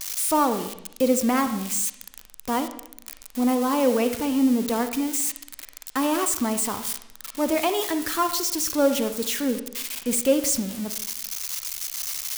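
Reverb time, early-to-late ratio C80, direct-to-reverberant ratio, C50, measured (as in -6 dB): 0.75 s, 13.0 dB, 9.0 dB, 10.0 dB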